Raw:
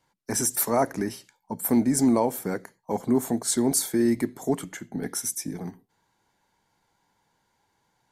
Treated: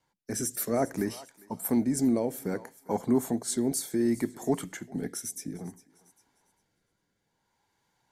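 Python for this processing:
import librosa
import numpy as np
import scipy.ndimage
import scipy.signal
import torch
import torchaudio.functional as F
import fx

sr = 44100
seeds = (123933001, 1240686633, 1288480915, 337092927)

y = fx.echo_thinned(x, sr, ms=402, feedback_pct=30, hz=510.0, wet_db=-21.0)
y = fx.rotary(y, sr, hz=0.6)
y = y * 10.0 ** (-1.5 / 20.0)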